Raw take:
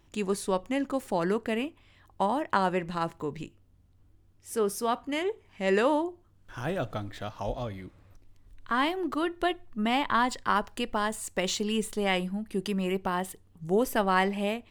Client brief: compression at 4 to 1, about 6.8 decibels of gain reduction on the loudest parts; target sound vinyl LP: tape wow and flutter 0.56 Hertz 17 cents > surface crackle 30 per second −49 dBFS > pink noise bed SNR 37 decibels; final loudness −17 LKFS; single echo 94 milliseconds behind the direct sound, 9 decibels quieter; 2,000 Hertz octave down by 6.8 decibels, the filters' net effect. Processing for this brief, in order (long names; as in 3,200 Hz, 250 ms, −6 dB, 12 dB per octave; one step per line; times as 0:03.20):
parametric band 2,000 Hz −9 dB
downward compressor 4 to 1, threshold −29 dBFS
single-tap delay 94 ms −9 dB
tape wow and flutter 0.56 Hz 17 cents
surface crackle 30 per second −49 dBFS
pink noise bed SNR 37 dB
level +17.5 dB